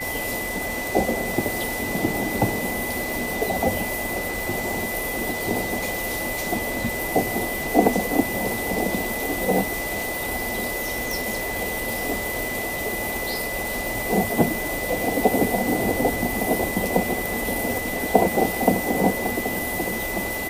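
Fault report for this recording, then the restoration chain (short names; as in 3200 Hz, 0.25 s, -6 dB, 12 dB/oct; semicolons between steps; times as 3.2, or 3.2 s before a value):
tone 2000 Hz -29 dBFS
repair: notch 2000 Hz, Q 30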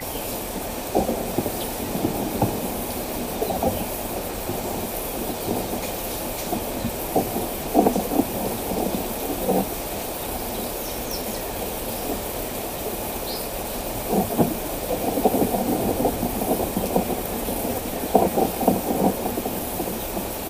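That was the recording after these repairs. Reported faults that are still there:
none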